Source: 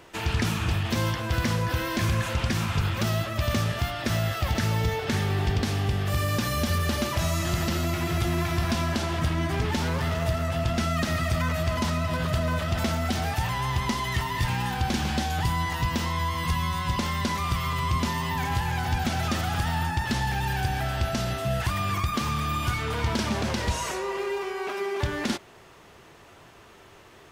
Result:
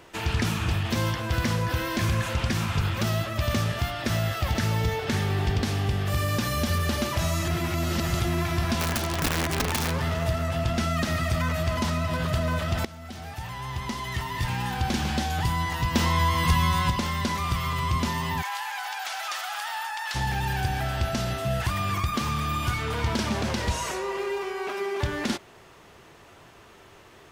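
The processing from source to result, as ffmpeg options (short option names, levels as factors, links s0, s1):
-filter_complex "[0:a]asplit=3[s0][s1][s2];[s0]afade=t=out:st=8.79:d=0.02[s3];[s1]aeval=exprs='(mod(9.44*val(0)+1,2)-1)/9.44':c=same,afade=t=in:st=8.79:d=0.02,afade=t=out:st=9.9:d=0.02[s4];[s2]afade=t=in:st=9.9:d=0.02[s5];[s3][s4][s5]amix=inputs=3:normalize=0,asettb=1/sr,asplit=3[s6][s7][s8];[s6]atrim=end=15.954[s9];[s7]atrim=start=15.95:end=16.9,asetpts=PTS-STARTPTS,afade=t=in:d=0.004:c=qsin,afade=t=out:st=0.946:d=0.004:c=qsin,acontrast=23[s10];[s8]atrim=start=16.896[s11];[s9][s10]acrossfade=d=0.004:c1=hsin:c2=qsin[s12];[s12][s11]acrossfade=d=0.004:c1=qsin:c2=hsin,asplit=3[s13][s14][s15];[s13]afade=t=out:st=18.41:d=0.02[s16];[s14]highpass=f=790:w=0.5412,highpass=f=790:w=1.3066,afade=t=in:st=18.41:d=0.02,afade=t=out:st=20.14:d=0.02[s17];[s15]afade=t=in:st=20.14:d=0.02[s18];[s16][s17][s18]amix=inputs=3:normalize=0,asplit=4[s19][s20][s21][s22];[s19]atrim=end=7.482[s23];[s20]atrim=start=7.478:end=8.202,asetpts=PTS-STARTPTS,areverse[s24];[s21]atrim=start=8.198:end=12.85,asetpts=PTS-STARTPTS,afade=t=out:st=4.648:d=0.004:c=hsin:silence=0.125893[s25];[s22]atrim=start=12.85,asetpts=PTS-STARTPTS,afade=t=in:d=2.06:silence=0.125893[s26];[s23][s24]acrossfade=d=0.004:c1=hsin:c2=hsin[s27];[s25][s26]concat=n=2:v=0:a=1[s28];[s27][s28]acrossfade=d=0.004:c1=hsin:c2=hsin"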